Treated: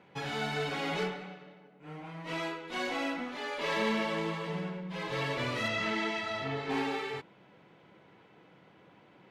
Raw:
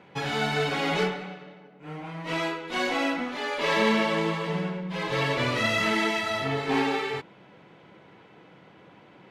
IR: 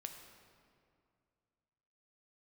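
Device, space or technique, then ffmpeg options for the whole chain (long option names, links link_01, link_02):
parallel distortion: -filter_complex "[0:a]asplit=2[link_01][link_02];[link_02]asoftclip=type=hard:threshold=-27dB,volume=-12dB[link_03];[link_01][link_03]amix=inputs=2:normalize=0,asettb=1/sr,asplit=3[link_04][link_05][link_06];[link_04]atrim=end=5.684[link_07];[link_05]atrim=start=5.68:end=6.7,asetpts=PTS-STARTPTS,afade=type=in:duration=0.004:curve=qsin,afade=type=out:start_time=1.016:duration=0.004:curve=qsin,lowpass=5900[link_08];[link_06]atrim=start=6.696[link_09];[link_07][link_08]acrossfade=duration=0.004:curve1=hsin:curve2=qsin[link_10];[link_10][link_09]acrossfade=duration=0.004:curve1=qsin:curve2=hsin,volume=-8.5dB"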